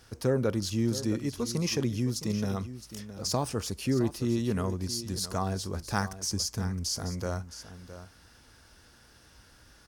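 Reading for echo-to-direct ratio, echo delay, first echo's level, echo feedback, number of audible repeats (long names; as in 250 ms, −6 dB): −13.0 dB, 665 ms, −13.0 dB, repeats not evenly spaced, 1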